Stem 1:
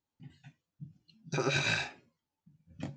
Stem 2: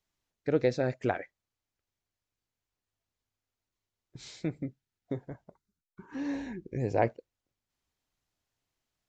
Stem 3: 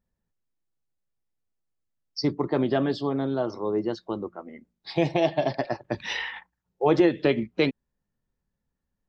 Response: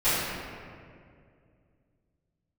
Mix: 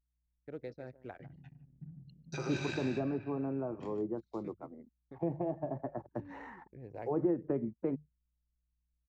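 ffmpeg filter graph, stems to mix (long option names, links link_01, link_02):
-filter_complex "[0:a]adelay=1000,volume=-2.5dB,afade=type=out:start_time=1.73:duration=0.76:silence=0.473151,asplit=3[link_01][link_02][link_03];[link_02]volume=-17.5dB[link_04];[link_03]volume=-7dB[link_05];[1:a]acrusher=bits=9:mix=0:aa=0.000001,aeval=exprs='val(0)+0.00158*(sin(2*PI*60*n/s)+sin(2*PI*2*60*n/s)/2+sin(2*PI*3*60*n/s)/3+sin(2*PI*4*60*n/s)/4+sin(2*PI*5*60*n/s)/5)':channel_layout=same,volume=-17.5dB,asplit=2[link_06][link_07];[link_07]volume=-14.5dB[link_08];[2:a]lowpass=frequency=1300:width=0.5412,lowpass=frequency=1300:width=1.3066,bandreject=frequency=50:width_type=h:width=6,bandreject=frequency=100:width_type=h:width=6,bandreject=frequency=150:width_type=h:width=6,adelay=250,volume=-8dB[link_09];[3:a]atrim=start_sample=2205[link_10];[link_04][link_10]afir=irnorm=-1:irlink=0[link_11];[link_05][link_08]amix=inputs=2:normalize=0,aecho=0:1:150:1[link_12];[link_01][link_06][link_09][link_11][link_12]amix=inputs=5:normalize=0,anlmdn=0.000398,acrossover=split=360[link_13][link_14];[link_14]acompressor=threshold=-40dB:ratio=2.5[link_15];[link_13][link_15]amix=inputs=2:normalize=0"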